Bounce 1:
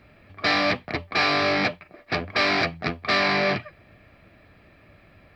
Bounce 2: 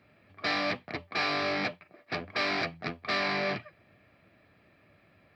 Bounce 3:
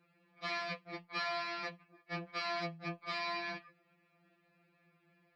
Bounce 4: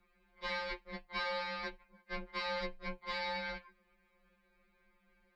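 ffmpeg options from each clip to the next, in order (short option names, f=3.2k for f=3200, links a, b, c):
-af "highpass=100,volume=-8dB"
-af "afftfilt=real='re*2.83*eq(mod(b,8),0)':imag='im*2.83*eq(mod(b,8),0)':win_size=2048:overlap=0.75,volume=-6dB"
-af "afreqshift=-150"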